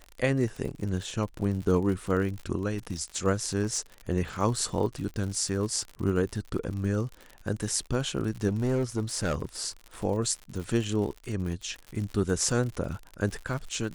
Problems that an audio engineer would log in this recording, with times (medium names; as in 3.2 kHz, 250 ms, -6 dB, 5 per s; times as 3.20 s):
crackle 64 per s -34 dBFS
3.63–3.79 s: clipped -22.5 dBFS
8.47–9.45 s: clipped -23 dBFS